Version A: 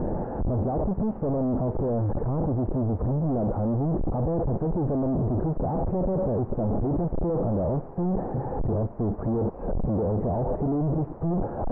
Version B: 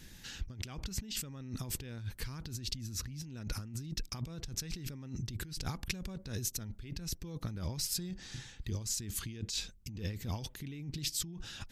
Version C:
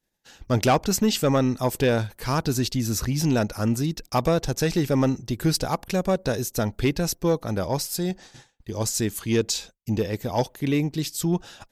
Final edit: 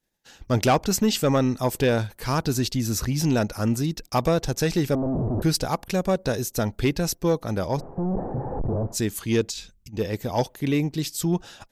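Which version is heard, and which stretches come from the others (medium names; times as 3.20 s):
C
4.95–5.42 s: from A
7.78–8.95 s: from A, crossfade 0.06 s
9.50–9.97 s: from B, crossfade 0.10 s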